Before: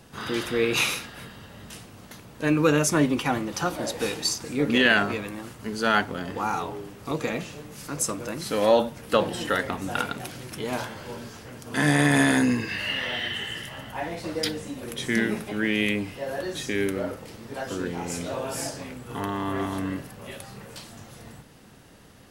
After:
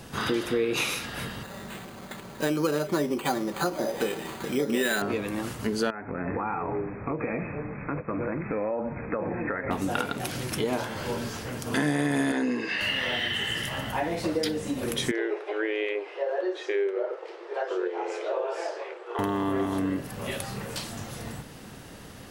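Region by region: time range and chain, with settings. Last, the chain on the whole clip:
0:01.43–0:05.02: low-shelf EQ 200 Hz −8.5 dB + comb filter 5.2 ms, depth 40% + bad sample-rate conversion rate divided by 8×, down filtered, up hold
0:05.90–0:09.71: downward compressor, threshold −31 dBFS + linear-phase brick-wall low-pass 2,600 Hz
0:12.32–0:12.81: high-pass filter 290 Hz + high-frequency loss of the air 75 metres
0:15.11–0:19.19: linear-phase brick-wall high-pass 330 Hz + head-to-tape spacing loss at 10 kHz 31 dB
whole clip: dynamic equaliser 380 Hz, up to +7 dB, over −36 dBFS, Q 0.82; downward compressor 4 to 1, threshold −33 dBFS; level +7 dB

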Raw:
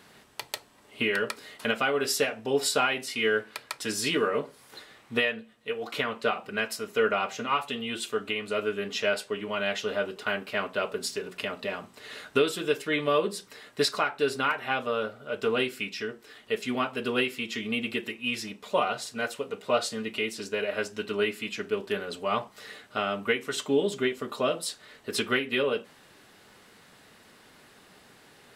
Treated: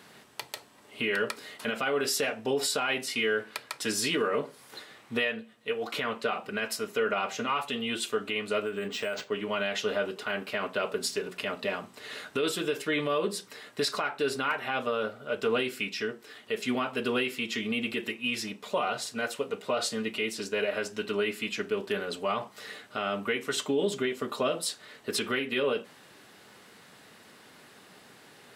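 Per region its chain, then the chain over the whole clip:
0:08.62–0:09.32: downward compressor, threshold −29 dBFS + linearly interpolated sample-rate reduction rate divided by 4×
whole clip: brickwall limiter −20 dBFS; high-pass filter 100 Hz; level +1.5 dB

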